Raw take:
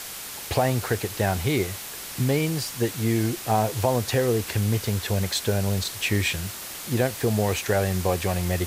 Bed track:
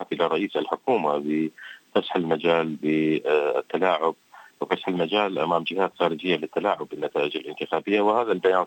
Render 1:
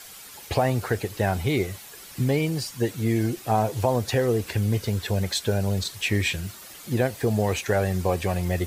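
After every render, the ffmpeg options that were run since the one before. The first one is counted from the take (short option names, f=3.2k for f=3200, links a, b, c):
-af "afftdn=nr=10:nf=-37"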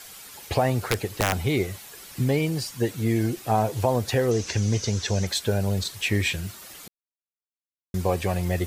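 -filter_complex "[0:a]asettb=1/sr,asplit=3[a][b][c];[a]atrim=end=0.764[d];[b]atrim=start=0.76:end=1.35,asetpts=PTS-STARTPTS,afade=t=in:d=0.004:c=qsin,afade=t=out:st=0.586:d=0.004:c=qsin,aeval=exprs='(mod(4.47*val(0)+1,2)-1)/4.47':c=same[e];[c]atrim=start=1.346[f];[d][e]acrossfade=d=0.004:c1=hsin:c2=qsin[g];[g][f]acrossfade=d=0.004:c1=qsin:c2=hsin,asettb=1/sr,asplit=3[h][i][j];[h]atrim=end=4.314[k];[i]atrim=start=4.31:end=5.27,asetpts=PTS-STARTPTS,afade=t=in:d=0.004:c=qsin,afade=t=out:st=0.956:d=0.004:c=qsin,lowpass=f=6.1k:t=q:w=5.3[l];[j]atrim=start=5.266[m];[k][l]acrossfade=d=0.004:c1=hsin:c2=qsin[n];[n][m]acrossfade=d=0.004:c1=qsin:c2=hsin,asplit=3[o][p][q];[o]atrim=end=6.88,asetpts=PTS-STARTPTS,afade=t=out:st=6.876:d=0.004:c=hsin[r];[p]atrim=start=6.88:end=7.94,asetpts=PTS-STARTPTS,volume=0[s];[q]atrim=start=7.94,asetpts=PTS-STARTPTS,afade=t=in:d=0.004:c=hsin[t];[r][s][t]concat=n=3:v=0:a=1"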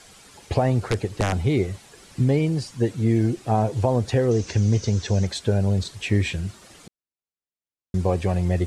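-af "lowpass=f=9.5k:w=0.5412,lowpass=f=9.5k:w=1.3066,tiltshelf=f=670:g=4.5"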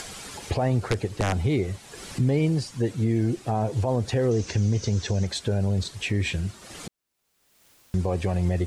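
-af "alimiter=limit=-14.5dB:level=0:latency=1:release=86,acompressor=mode=upward:threshold=-29dB:ratio=2.5"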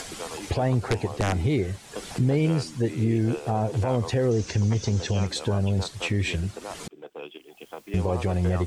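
-filter_complex "[1:a]volume=-15dB[a];[0:a][a]amix=inputs=2:normalize=0"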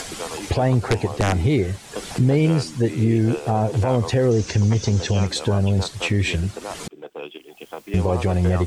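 -af "volume=5dB"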